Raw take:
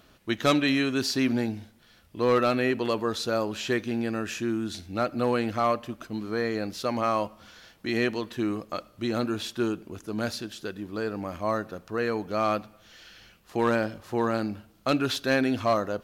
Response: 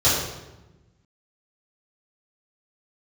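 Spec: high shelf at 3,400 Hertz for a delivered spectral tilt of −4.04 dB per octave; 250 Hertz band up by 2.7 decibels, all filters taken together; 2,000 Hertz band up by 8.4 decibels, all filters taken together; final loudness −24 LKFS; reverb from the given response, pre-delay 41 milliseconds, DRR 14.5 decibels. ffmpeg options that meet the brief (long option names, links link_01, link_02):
-filter_complex "[0:a]equalizer=frequency=250:width_type=o:gain=3,equalizer=frequency=2000:width_type=o:gain=8,highshelf=frequency=3400:gain=8.5,asplit=2[link_01][link_02];[1:a]atrim=start_sample=2205,adelay=41[link_03];[link_02][link_03]afir=irnorm=-1:irlink=0,volume=-33dB[link_04];[link_01][link_04]amix=inputs=2:normalize=0"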